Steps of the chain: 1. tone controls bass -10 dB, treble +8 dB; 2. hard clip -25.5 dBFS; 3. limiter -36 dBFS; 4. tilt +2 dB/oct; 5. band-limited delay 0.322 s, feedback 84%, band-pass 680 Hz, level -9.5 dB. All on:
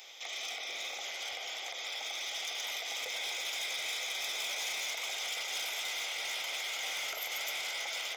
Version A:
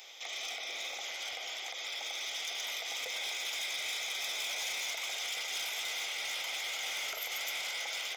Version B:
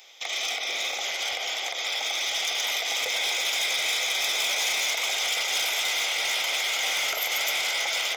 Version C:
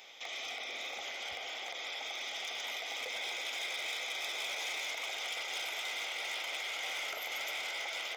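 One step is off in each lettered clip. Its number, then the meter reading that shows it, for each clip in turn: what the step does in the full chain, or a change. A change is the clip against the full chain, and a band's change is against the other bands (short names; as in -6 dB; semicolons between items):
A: 5, echo-to-direct -8.0 dB to none; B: 3, mean gain reduction 10.0 dB; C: 1, 8 kHz band -6.0 dB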